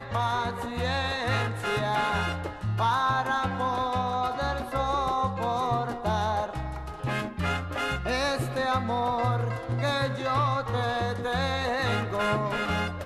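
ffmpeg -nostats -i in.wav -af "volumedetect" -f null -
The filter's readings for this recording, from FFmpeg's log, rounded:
mean_volume: -27.8 dB
max_volume: -13.5 dB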